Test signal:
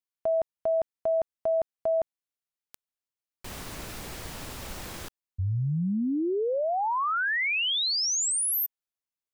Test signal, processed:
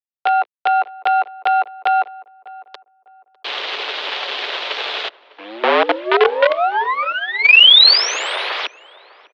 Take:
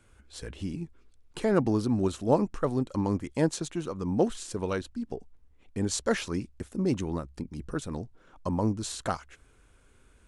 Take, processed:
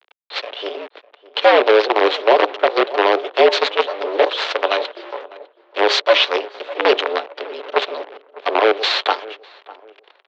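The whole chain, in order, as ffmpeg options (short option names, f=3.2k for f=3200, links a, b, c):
-filter_complex "[0:a]tiltshelf=f=870:g=5.5,bandreject=f=60:t=h:w=6,bandreject=f=120:t=h:w=6,bandreject=f=180:t=h:w=6,bandreject=f=240:t=h:w=6,bandreject=f=300:t=h:w=6,bandreject=f=360:t=h:w=6,bandreject=f=420:t=h:w=6,bandreject=f=480:t=h:w=6,bandreject=f=540:t=h:w=6,aecho=1:1:6.5:0.61,aexciter=amount=12.9:drive=3.5:freq=2.6k,acrusher=bits=4:dc=4:mix=0:aa=0.000001,asoftclip=type=tanh:threshold=0dB,highpass=f=310:t=q:w=0.5412,highpass=f=310:t=q:w=1.307,lowpass=f=3.5k:t=q:w=0.5176,lowpass=f=3.5k:t=q:w=0.7071,lowpass=f=3.5k:t=q:w=1.932,afreqshift=110,asplit=2[a][b];[b]adelay=602,lowpass=f=1.3k:p=1,volume=-19dB,asplit=2[c][d];[d]adelay=602,lowpass=f=1.3k:p=1,volume=0.32,asplit=2[e][f];[f]adelay=602,lowpass=f=1.3k:p=1,volume=0.32[g];[a][c][e][g]amix=inputs=4:normalize=0,alimiter=level_in=13dB:limit=-1dB:release=50:level=0:latency=1,volume=-1dB"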